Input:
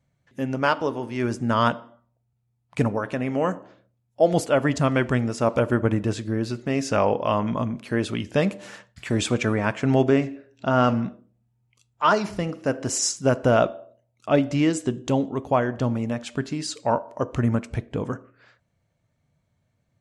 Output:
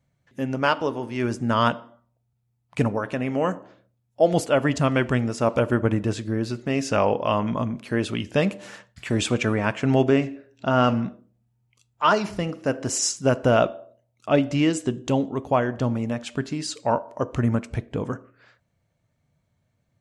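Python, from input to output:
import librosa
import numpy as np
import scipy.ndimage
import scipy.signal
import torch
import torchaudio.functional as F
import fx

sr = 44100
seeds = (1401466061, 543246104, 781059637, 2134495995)

y = fx.dynamic_eq(x, sr, hz=2800.0, q=4.6, threshold_db=-45.0, ratio=4.0, max_db=4)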